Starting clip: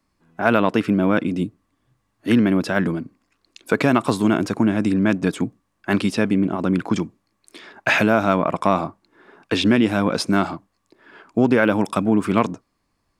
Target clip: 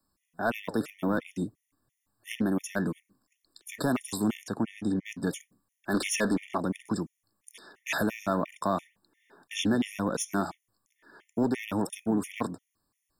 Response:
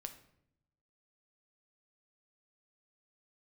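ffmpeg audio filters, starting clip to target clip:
-filter_complex "[0:a]asettb=1/sr,asplit=3[link_01][link_02][link_03];[link_01]atrim=end=4.434[link_04];[link_02]atrim=start=4.43:end=5.05,asetpts=PTS-STARTPTS,afade=type=in:duration=0.004:curve=qsin,afade=type=out:start_time=0.616:duration=0.004:curve=qsin,highshelf=frequency=5800:gain=-10.5[link_05];[link_03]atrim=start=5.046[link_06];[link_04][link_05]acrossfade=duration=0.004:curve1=hsin:curve2=qsin[link_07];[link_07][link_06]acrossfade=duration=0.004:curve1=qsin:curve2=hsin,asettb=1/sr,asplit=3[link_08][link_09][link_10];[link_08]atrim=end=5.944[link_11];[link_09]atrim=start=5.94:end=6.58,asetpts=PTS-STARTPTS,afade=type=in:duration=0.004:curve=qsin,afade=type=out:start_time=0.636:duration=0.004:curve=qsin,asplit=2[link_12][link_13];[link_13]highpass=frequency=720:poles=1,volume=19dB,asoftclip=type=tanh:threshold=-4.5dB[link_14];[link_12][link_14]amix=inputs=2:normalize=0,lowpass=frequency=4800:poles=1,volume=-6dB[link_15];[link_10]atrim=start=6.576[link_16];[link_11][link_15]acrossfade=duration=0.004:curve1=hsin:curve2=qsin[link_17];[link_17][link_16]acrossfade=duration=0.004:curve1=qsin:curve2=hsin,acrossover=split=310|4800[link_18][link_19][link_20];[link_20]crystalizer=i=3:c=0[link_21];[link_18][link_19][link_21]amix=inputs=3:normalize=0,asoftclip=type=tanh:threshold=-9.5dB,flanger=delay=0.9:depth=9.4:regen=87:speed=2:shape=triangular,afftfilt=real='re*gt(sin(2*PI*2.9*pts/sr)*(1-2*mod(floor(b*sr/1024/1800),2)),0)':imag='im*gt(sin(2*PI*2.9*pts/sr)*(1-2*mod(floor(b*sr/1024/1800),2)),0)':win_size=1024:overlap=0.75,volume=-3dB"

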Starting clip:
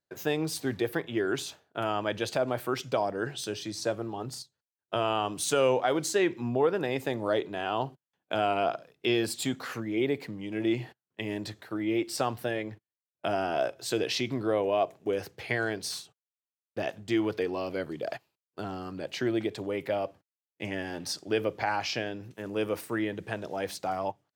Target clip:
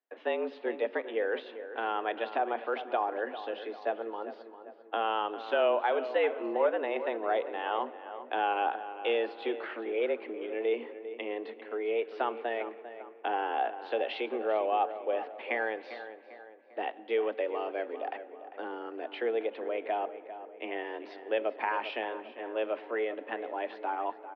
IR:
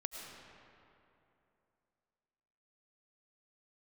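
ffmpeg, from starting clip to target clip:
-filter_complex "[0:a]asplit=2[link_01][link_02];[link_02]adelay=398,lowpass=frequency=2300:poles=1,volume=-12dB,asplit=2[link_03][link_04];[link_04]adelay=398,lowpass=frequency=2300:poles=1,volume=0.49,asplit=2[link_05][link_06];[link_06]adelay=398,lowpass=frequency=2300:poles=1,volume=0.49,asplit=2[link_07][link_08];[link_08]adelay=398,lowpass=frequency=2300:poles=1,volume=0.49,asplit=2[link_09][link_10];[link_10]adelay=398,lowpass=frequency=2300:poles=1,volume=0.49[link_11];[link_01][link_03][link_05][link_07][link_09][link_11]amix=inputs=6:normalize=0,asplit=2[link_12][link_13];[1:a]atrim=start_sample=2205,lowpass=3000[link_14];[link_13][link_14]afir=irnorm=-1:irlink=0,volume=-14.5dB[link_15];[link_12][link_15]amix=inputs=2:normalize=0,highpass=frequency=160:width_type=q:width=0.5412,highpass=frequency=160:width_type=q:width=1.307,lowpass=frequency=3100:width_type=q:width=0.5176,lowpass=frequency=3100:width_type=q:width=0.7071,lowpass=frequency=3100:width_type=q:width=1.932,afreqshift=110,volume=-3dB"

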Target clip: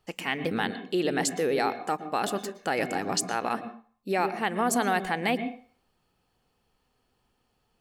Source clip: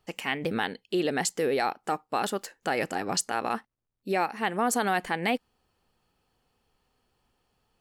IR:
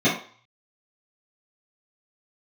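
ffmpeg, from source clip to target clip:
-filter_complex "[0:a]asplit=2[link_01][link_02];[1:a]atrim=start_sample=2205,adelay=109[link_03];[link_02][link_03]afir=irnorm=-1:irlink=0,volume=-29.5dB[link_04];[link_01][link_04]amix=inputs=2:normalize=0"

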